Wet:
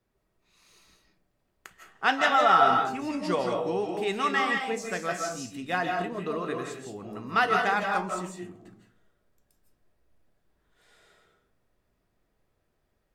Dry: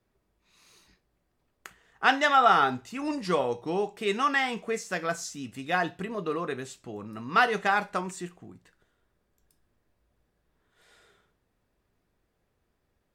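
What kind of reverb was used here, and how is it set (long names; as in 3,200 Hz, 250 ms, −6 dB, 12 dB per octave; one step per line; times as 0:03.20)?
comb and all-pass reverb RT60 0.52 s, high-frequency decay 0.35×, pre-delay 120 ms, DRR 1.5 dB
level −2 dB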